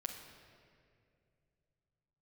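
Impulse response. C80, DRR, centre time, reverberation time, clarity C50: 7.0 dB, 0.5 dB, 45 ms, 2.4 s, 5.5 dB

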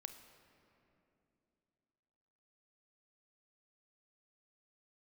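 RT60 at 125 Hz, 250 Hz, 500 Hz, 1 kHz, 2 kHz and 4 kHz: 3.1, 3.4, 3.1, 2.7, 2.4, 1.8 s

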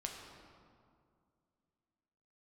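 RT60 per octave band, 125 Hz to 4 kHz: 2.7, 2.9, 2.3, 2.1, 1.6, 1.2 s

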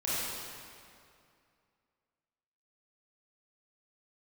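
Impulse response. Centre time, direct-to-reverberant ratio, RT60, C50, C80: 0.165 s, -10.0 dB, 2.4 s, -5.5 dB, -2.5 dB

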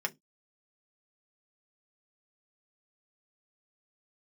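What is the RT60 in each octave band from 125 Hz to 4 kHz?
0.25, 0.25, 0.20, 0.15, 0.15, 0.15 s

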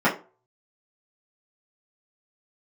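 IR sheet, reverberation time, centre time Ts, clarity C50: 0.35 s, 20 ms, 11.5 dB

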